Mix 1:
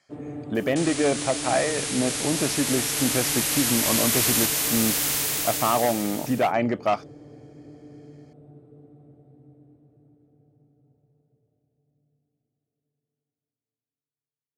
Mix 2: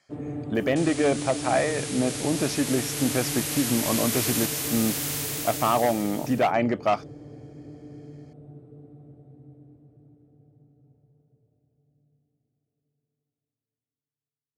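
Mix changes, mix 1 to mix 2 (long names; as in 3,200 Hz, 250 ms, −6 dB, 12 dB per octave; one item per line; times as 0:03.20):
first sound: add low-shelf EQ 180 Hz +6.5 dB
second sound −5.5 dB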